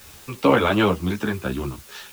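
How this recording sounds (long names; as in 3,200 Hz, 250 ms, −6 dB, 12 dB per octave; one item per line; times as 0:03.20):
tremolo triangle 2.7 Hz, depth 50%
a quantiser's noise floor 8 bits, dither triangular
a shimmering, thickened sound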